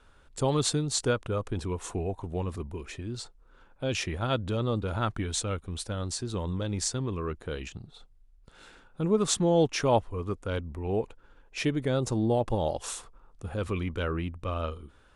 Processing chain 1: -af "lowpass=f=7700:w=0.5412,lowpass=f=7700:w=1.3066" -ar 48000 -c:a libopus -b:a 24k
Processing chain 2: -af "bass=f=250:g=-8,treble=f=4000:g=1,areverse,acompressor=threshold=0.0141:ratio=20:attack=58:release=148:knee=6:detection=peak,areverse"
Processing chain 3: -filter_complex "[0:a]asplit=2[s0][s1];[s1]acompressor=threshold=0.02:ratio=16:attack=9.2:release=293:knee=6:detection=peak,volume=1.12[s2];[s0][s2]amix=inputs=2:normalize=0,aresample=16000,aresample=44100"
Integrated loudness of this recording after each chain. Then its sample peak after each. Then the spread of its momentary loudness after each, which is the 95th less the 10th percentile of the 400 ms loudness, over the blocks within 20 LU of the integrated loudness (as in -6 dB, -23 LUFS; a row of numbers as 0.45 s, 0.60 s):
-31.0 LUFS, -38.5 LUFS, -28.0 LUFS; -11.5 dBFS, -18.5 dBFS, -10.0 dBFS; 13 LU, 9 LU, 12 LU